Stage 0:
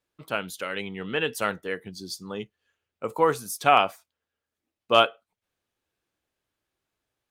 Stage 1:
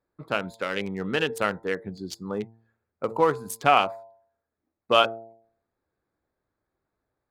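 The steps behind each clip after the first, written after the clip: local Wiener filter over 15 samples; de-hum 113.2 Hz, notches 9; in parallel at +2.5 dB: compression, threshold -28 dBFS, peak gain reduction 14 dB; on the sum: trim -2.5 dB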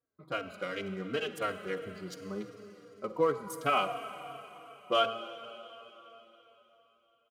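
comb of notches 880 Hz; reverberation RT60 3.8 s, pre-delay 44 ms, DRR 9 dB; endless flanger 3.8 ms -2.8 Hz; trim -4.5 dB

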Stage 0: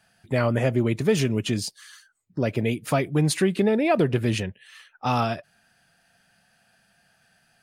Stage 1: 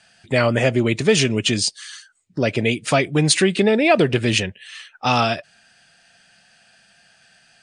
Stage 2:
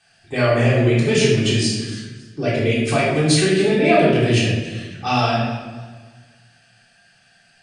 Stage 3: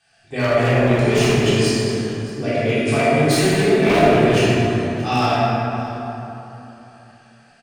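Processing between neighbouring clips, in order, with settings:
FFT filter 130 Hz 0 dB, 660 Hz +4 dB, 1 kHz +2 dB, 2.8 kHz +10 dB, 9 kHz +9 dB, 13 kHz -29 dB; trim +2 dB
simulated room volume 720 m³, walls mixed, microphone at 3.6 m; modulated delay 276 ms, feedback 33%, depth 53 cents, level -18.5 dB; trim -8.5 dB
wavefolder -10 dBFS; delay 626 ms -18.5 dB; plate-style reverb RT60 3.3 s, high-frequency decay 0.35×, DRR -4.5 dB; trim -4.5 dB

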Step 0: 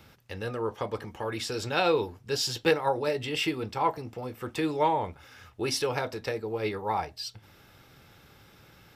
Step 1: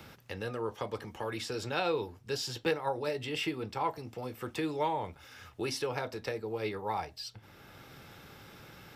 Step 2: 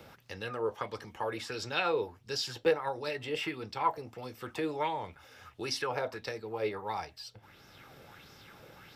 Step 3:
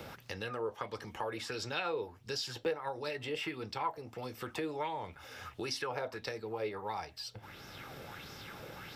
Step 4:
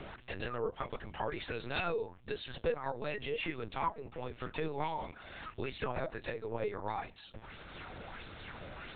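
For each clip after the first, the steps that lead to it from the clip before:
three bands compressed up and down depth 40%; trim -5 dB
dynamic bell 1.6 kHz, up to +4 dB, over -46 dBFS, Q 0.79; sweeping bell 1.5 Hz 490–5800 Hz +10 dB; trim -4 dB
compression 2:1, threshold -49 dBFS, peak gain reduction 15 dB; trim +6.5 dB
LPC vocoder at 8 kHz pitch kept; trim +1 dB

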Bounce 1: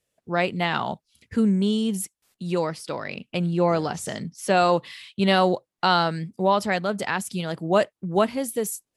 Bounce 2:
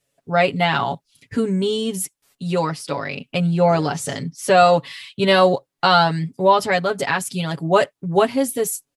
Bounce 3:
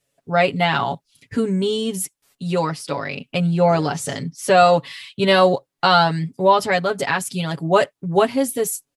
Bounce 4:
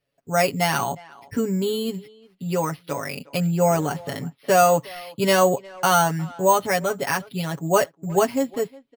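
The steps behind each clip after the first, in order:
comb 7.2 ms, depth 87%; trim +3 dB
no audible change
careless resampling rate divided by 6×, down filtered, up hold; speakerphone echo 360 ms, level -21 dB; trim -3 dB

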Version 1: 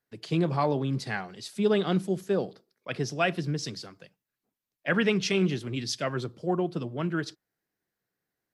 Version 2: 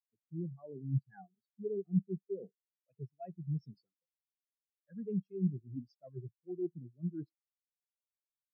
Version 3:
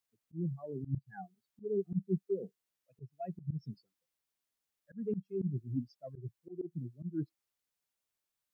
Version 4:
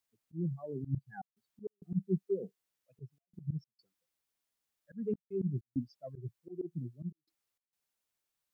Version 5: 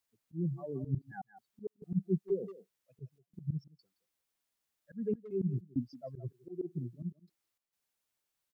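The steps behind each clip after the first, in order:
reverse; compression 16:1, threshold -34 dBFS, peak gain reduction 16 dB; reverse; spectral contrast expander 4:1; trim +4.5 dB
dynamic bell 580 Hz, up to -4 dB, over -49 dBFS, Q 0.94; slow attack 157 ms; trim +7.5 dB
trance gate "xxxxxxxx.xx.x" 99 bpm -60 dB; trim +1 dB
speakerphone echo 170 ms, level -13 dB; trim +1 dB

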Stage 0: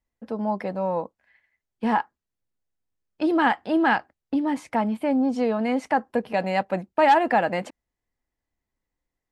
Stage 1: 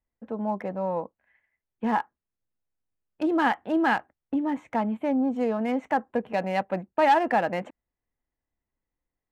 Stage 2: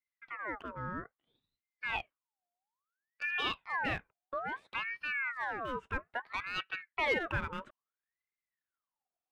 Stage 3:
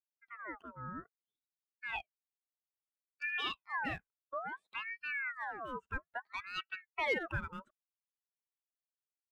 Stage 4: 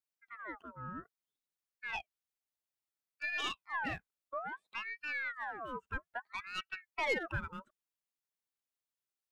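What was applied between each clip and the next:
local Wiener filter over 9 samples; trim -2.5 dB
ring modulator with a swept carrier 1.4 kHz, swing 50%, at 0.6 Hz; trim -8.5 dB
expander on every frequency bin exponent 1.5; trim -1 dB
tracing distortion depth 0.036 ms

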